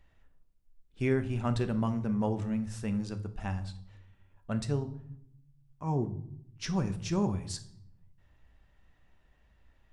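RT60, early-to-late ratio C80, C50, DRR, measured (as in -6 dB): 0.70 s, 18.5 dB, 14.5 dB, 9.0 dB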